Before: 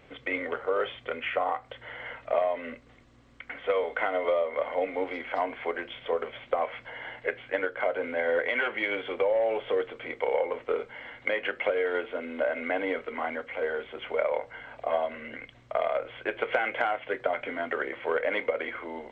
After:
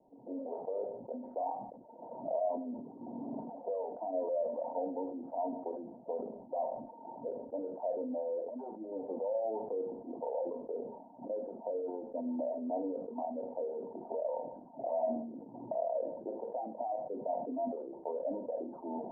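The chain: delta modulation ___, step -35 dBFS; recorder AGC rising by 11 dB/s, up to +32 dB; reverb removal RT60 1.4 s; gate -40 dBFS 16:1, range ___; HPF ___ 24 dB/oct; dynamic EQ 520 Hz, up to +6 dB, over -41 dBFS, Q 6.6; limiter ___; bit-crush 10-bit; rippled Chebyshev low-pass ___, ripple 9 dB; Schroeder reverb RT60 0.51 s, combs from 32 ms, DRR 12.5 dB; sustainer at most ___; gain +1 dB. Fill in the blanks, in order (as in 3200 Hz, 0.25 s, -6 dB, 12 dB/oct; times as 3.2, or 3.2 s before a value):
64 kbps, -19 dB, 190 Hz, -22 dBFS, 950 Hz, 60 dB/s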